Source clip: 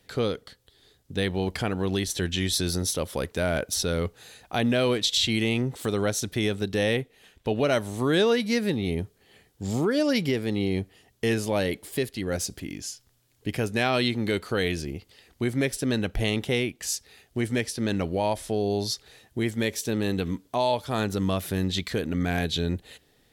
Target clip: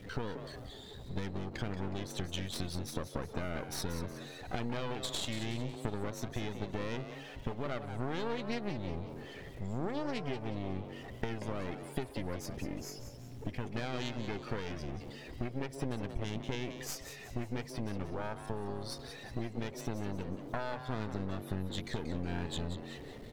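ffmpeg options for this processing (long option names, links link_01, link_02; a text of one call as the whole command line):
ffmpeg -i in.wav -filter_complex "[0:a]aeval=exprs='val(0)+0.5*0.0316*sgn(val(0))':channel_layout=same,afftdn=noise_reduction=16:noise_floor=-33,highshelf=frequency=5300:gain=-12,acompressor=threshold=-31dB:ratio=6,aeval=exprs='clip(val(0),-1,0.00422)':channel_layout=same,aeval=exprs='0.0891*(cos(1*acos(clip(val(0)/0.0891,-1,1)))-cos(1*PI/2))+0.0112*(cos(3*acos(clip(val(0)/0.0891,-1,1)))-cos(3*PI/2))+0.00316*(cos(7*acos(clip(val(0)/0.0891,-1,1)))-cos(7*PI/2))':channel_layout=same,asplit=2[link_01][link_02];[link_02]asplit=4[link_03][link_04][link_05][link_06];[link_03]adelay=183,afreqshift=140,volume=-10dB[link_07];[link_04]adelay=366,afreqshift=280,volume=-17.5dB[link_08];[link_05]adelay=549,afreqshift=420,volume=-25.1dB[link_09];[link_06]adelay=732,afreqshift=560,volume=-32.6dB[link_10];[link_07][link_08][link_09][link_10]amix=inputs=4:normalize=0[link_11];[link_01][link_11]amix=inputs=2:normalize=0,volume=3dB" out.wav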